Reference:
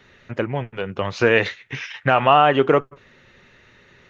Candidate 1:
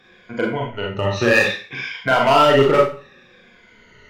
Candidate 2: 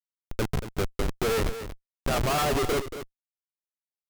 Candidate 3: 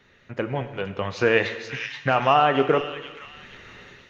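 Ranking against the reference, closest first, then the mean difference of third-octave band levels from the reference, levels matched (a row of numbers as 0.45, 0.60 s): 3, 1, 2; 4.5, 6.5, 14.0 dB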